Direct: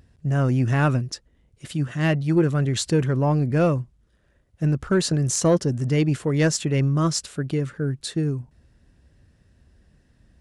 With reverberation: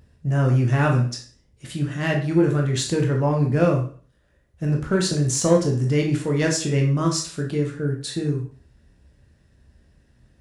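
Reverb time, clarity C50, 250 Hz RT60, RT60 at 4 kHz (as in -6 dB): 0.45 s, 7.5 dB, 0.45 s, 0.40 s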